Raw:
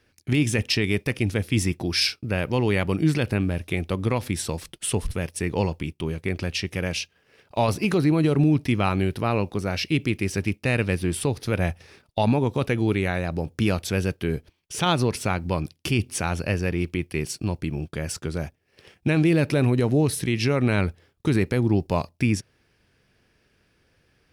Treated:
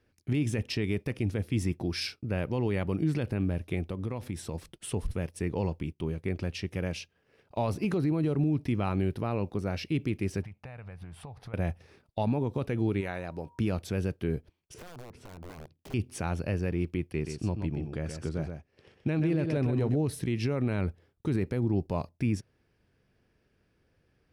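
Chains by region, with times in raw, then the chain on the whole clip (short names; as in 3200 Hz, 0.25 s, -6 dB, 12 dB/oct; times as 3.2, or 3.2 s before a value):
3.85–4.55 notch 4500 Hz, Q 27 + compressor 3:1, threshold -26 dBFS
10.43–11.54 EQ curve 140 Hz 0 dB, 340 Hz -15 dB, 760 Hz +8 dB, 6200 Hz -8 dB + compressor 20:1, threshold -34 dBFS + Doppler distortion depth 0.12 ms
13–13.58 low shelf 350 Hz -10 dB + whine 950 Hz -51 dBFS
14.74–15.94 LPF 1400 Hz 6 dB/oct + compressor 10:1, threshold -34 dBFS + wrapped overs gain 33 dB
17.12–19.96 LPF 8300 Hz + echo 0.127 s -7 dB
whole clip: tilt shelf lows +4.5 dB, about 1300 Hz; limiter -11 dBFS; gain -8.5 dB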